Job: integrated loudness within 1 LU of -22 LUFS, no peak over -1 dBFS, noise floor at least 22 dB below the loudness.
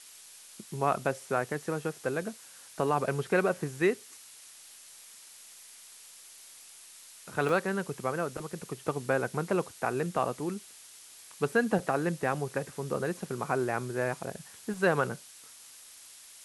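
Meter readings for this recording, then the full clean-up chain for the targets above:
dropouts 3; longest dropout 1.5 ms; noise floor -52 dBFS; noise floor target -54 dBFS; loudness -31.5 LUFS; peak -13.0 dBFS; loudness target -22.0 LUFS
-> interpolate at 7.49/10.19/14.74, 1.5 ms; noise print and reduce 6 dB; gain +9.5 dB

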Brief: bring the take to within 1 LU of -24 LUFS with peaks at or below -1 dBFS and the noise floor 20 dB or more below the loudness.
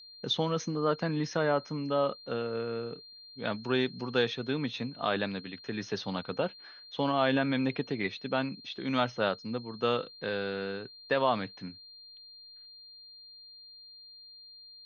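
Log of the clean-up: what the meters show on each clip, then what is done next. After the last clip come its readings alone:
steady tone 4200 Hz; tone level -49 dBFS; loudness -32.0 LUFS; peak -14.5 dBFS; loudness target -24.0 LUFS
-> notch 4200 Hz, Q 30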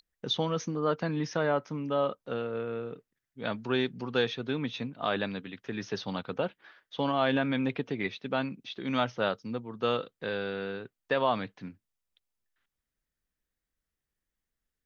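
steady tone none; loudness -32.0 LUFS; peak -14.5 dBFS; loudness target -24.0 LUFS
-> gain +8 dB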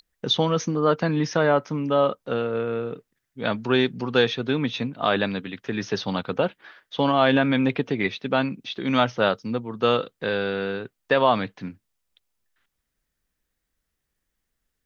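loudness -24.0 LUFS; peak -6.5 dBFS; noise floor -80 dBFS

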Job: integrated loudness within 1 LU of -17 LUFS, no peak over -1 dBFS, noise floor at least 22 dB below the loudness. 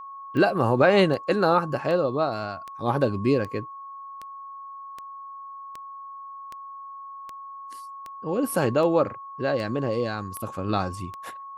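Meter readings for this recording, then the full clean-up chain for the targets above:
clicks 15; steady tone 1100 Hz; tone level -37 dBFS; loudness -24.5 LUFS; peak -7.0 dBFS; loudness target -17.0 LUFS
-> de-click; notch 1100 Hz, Q 30; gain +7.5 dB; limiter -1 dBFS

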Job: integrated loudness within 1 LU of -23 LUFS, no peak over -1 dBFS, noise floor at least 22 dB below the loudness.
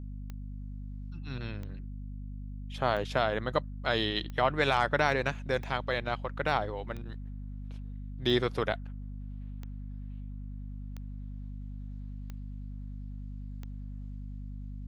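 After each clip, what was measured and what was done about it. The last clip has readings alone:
clicks 11; hum 50 Hz; harmonics up to 250 Hz; hum level -37 dBFS; loudness -34.0 LUFS; peak -11.0 dBFS; loudness target -23.0 LUFS
-> de-click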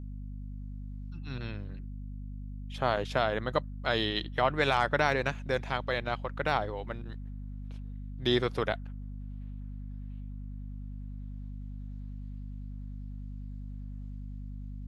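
clicks 0; hum 50 Hz; harmonics up to 250 Hz; hum level -37 dBFS
-> notches 50/100/150/200/250 Hz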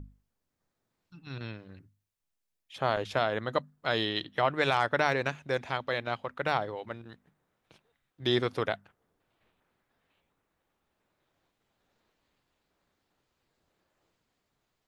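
hum none; loudness -30.5 LUFS; peak -11.5 dBFS; loudness target -23.0 LUFS
-> gain +7.5 dB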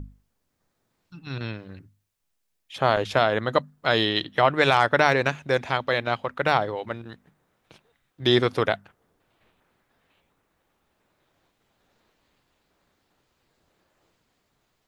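loudness -23.5 LUFS; peak -4.0 dBFS; noise floor -75 dBFS

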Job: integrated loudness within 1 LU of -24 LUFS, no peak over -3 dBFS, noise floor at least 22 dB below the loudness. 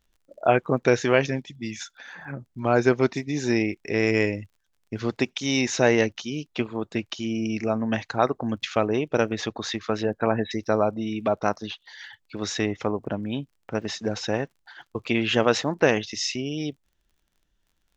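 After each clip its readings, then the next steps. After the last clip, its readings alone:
ticks 33/s; loudness -25.5 LUFS; peak -3.5 dBFS; loudness target -24.0 LUFS
-> de-click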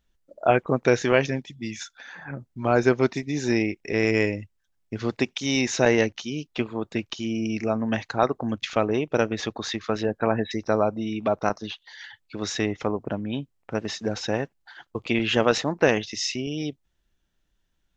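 ticks 0/s; loudness -25.5 LUFS; peak -3.5 dBFS; loudness target -24.0 LUFS
-> gain +1.5 dB; limiter -3 dBFS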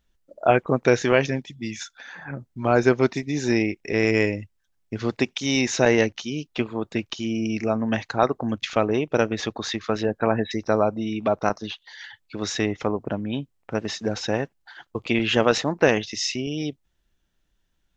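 loudness -24.0 LUFS; peak -3.0 dBFS; noise floor -71 dBFS

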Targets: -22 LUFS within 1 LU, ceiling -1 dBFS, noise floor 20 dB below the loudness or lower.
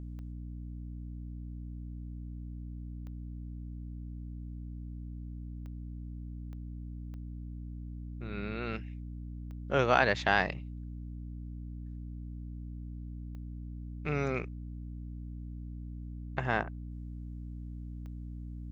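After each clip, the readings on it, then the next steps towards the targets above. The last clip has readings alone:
clicks 8; hum 60 Hz; harmonics up to 300 Hz; hum level -39 dBFS; loudness -38.0 LUFS; peak -8.0 dBFS; loudness target -22.0 LUFS
-> de-click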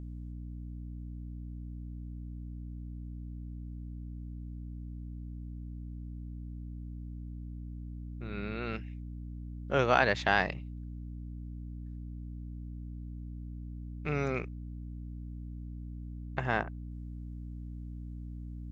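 clicks 0; hum 60 Hz; harmonics up to 300 Hz; hum level -39 dBFS
-> notches 60/120/180/240/300 Hz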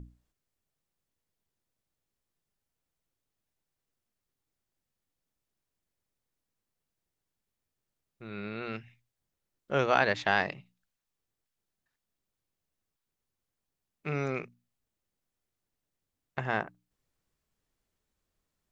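hum none; loudness -31.0 LUFS; peak -8.0 dBFS; loudness target -22.0 LUFS
-> gain +9 dB; limiter -1 dBFS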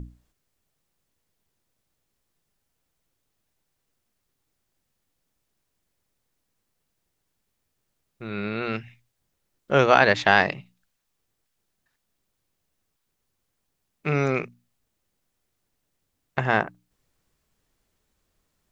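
loudness -22.5 LUFS; peak -1.0 dBFS; noise floor -78 dBFS

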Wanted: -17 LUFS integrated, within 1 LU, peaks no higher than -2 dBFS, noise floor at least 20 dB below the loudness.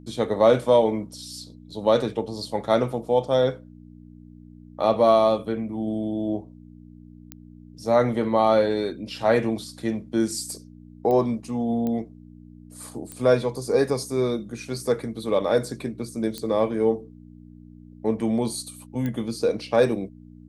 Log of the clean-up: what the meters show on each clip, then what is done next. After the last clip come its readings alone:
clicks 6; hum 60 Hz; harmonics up to 300 Hz; hum level -46 dBFS; loudness -24.0 LUFS; peak -6.5 dBFS; loudness target -17.0 LUFS
-> de-click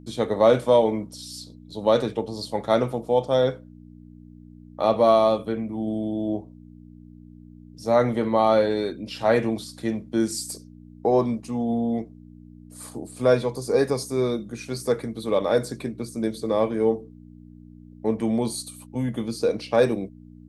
clicks 0; hum 60 Hz; harmonics up to 300 Hz; hum level -46 dBFS
-> de-hum 60 Hz, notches 5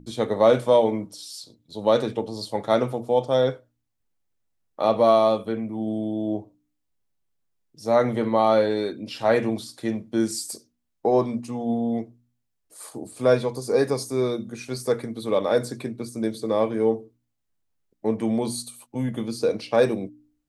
hum none; loudness -24.0 LUFS; peak -6.5 dBFS; loudness target -17.0 LUFS
-> gain +7 dB; limiter -2 dBFS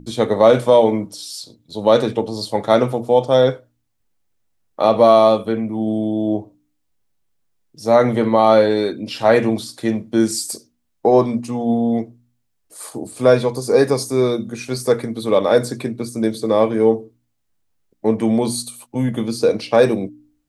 loudness -17.5 LUFS; peak -2.0 dBFS; noise floor -69 dBFS

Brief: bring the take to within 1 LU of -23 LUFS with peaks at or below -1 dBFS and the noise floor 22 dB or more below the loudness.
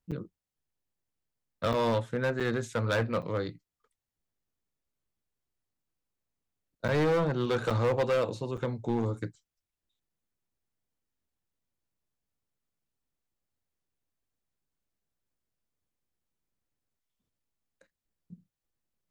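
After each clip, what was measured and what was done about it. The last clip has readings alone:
clipped 1.3%; flat tops at -22.5 dBFS; dropouts 7; longest dropout 6.5 ms; loudness -30.0 LUFS; peak -22.5 dBFS; loudness target -23.0 LUFS
-> clip repair -22.5 dBFS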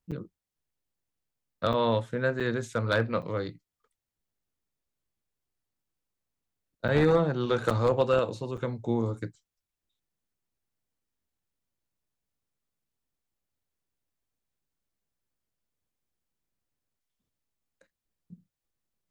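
clipped 0.0%; dropouts 7; longest dropout 6.5 ms
-> interpolate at 0.11/1.73/2.4/3.22/6.88/7.7/8.57, 6.5 ms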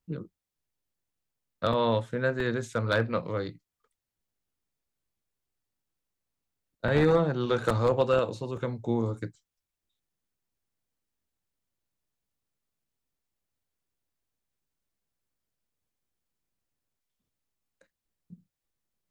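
dropouts 0; loudness -28.0 LUFS; peak -13.5 dBFS; loudness target -23.0 LUFS
-> gain +5 dB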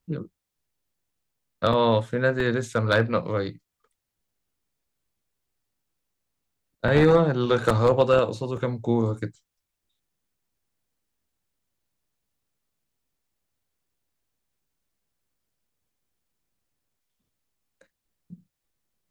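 loudness -23.0 LUFS; peak -8.5 dBFS; noise floor -83 dBFS

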